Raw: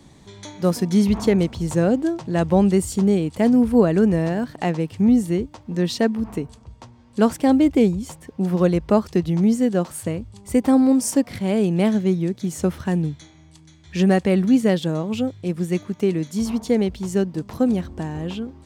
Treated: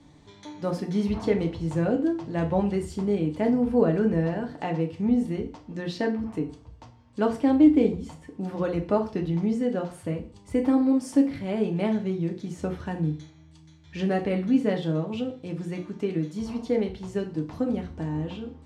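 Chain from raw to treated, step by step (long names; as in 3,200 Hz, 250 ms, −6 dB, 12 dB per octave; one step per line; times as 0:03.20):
high-frequency loss of the air 64 metres
feedback delay network reverb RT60 0.4 s, low-frequency decay 0.95×, high-frequency decay 0.9×, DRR 2 dB
dynamic equaliser 7,000 Hz, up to −6 dB, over −48 dBFS, Q 0.93
level −7 dB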